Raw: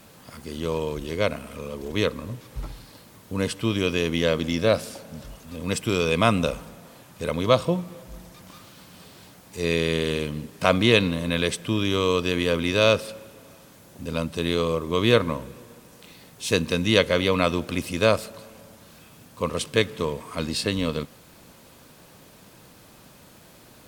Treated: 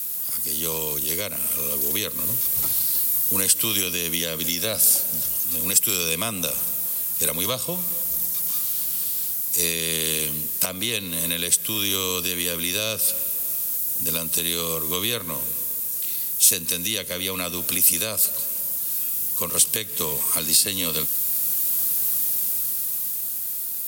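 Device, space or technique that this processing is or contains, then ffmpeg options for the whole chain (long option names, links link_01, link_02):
FM broadcast chain: -filter_complex "[0:a]highpass=61,dynaudnorm=framelen=200:gausssize=17:maxgain=10.5dB,acrossover=split=100|210|530[link_01][link_02][link_03][link_04];[link_01]acompressor=threshold=-44dB:ratio=4[link_05];[link_02]acompressor=threshold=-34dB:ratio=4[link_06];[link_03]acompressor=threshold=-30dB:ratio=4[link_07];[link_04]acompressor=threshold=-27dB:ratio=4[link_08];[link_05][link_06][link_07][link_08]amix=inputs=4:normalize=0,aemphasis=mode=production:type=75fm,alimiter=limit=-12.5dB:level=0:latency=1:release=220,asoftclip=type=hard:threshold=-15.5dB,lowpass=frequency=15000:width=0.5412,lowpass=frequency=15000:width=1.3066,aemphasis=mode=production:type=75fm,volume=-2.5dB"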